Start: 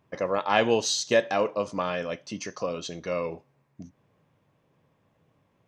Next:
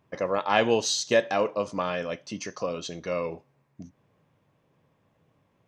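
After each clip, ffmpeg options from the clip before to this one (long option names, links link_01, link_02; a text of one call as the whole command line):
ffmpeg -i in.wav -af anull out.wav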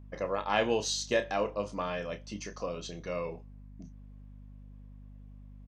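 ffmpeg -i in.wav -filter_complex "[0:a]asplit=2[link_01][link_02];[link_02]adelay=29,volume=-9.5dB[link_03];[link_01][link_03]amix=inputs=2:normalize=0,aeval=exprs='val(0)+0.00794*(sin(2*PI*50*n/s)+sin(2*PI*2*50*n/s)/2+sin(2*PI*3*50*n/s)/3+sin(2*PI*4*50*n/s)/4+sin(2*PI*5*50*n/s)/5)':channel_layout=same,volume=-6dB" out.wav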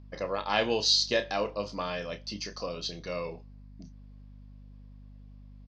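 ffmpeg -i in.wav -af "lowpass=frequency=4700:width_type=q:width=5" out.wav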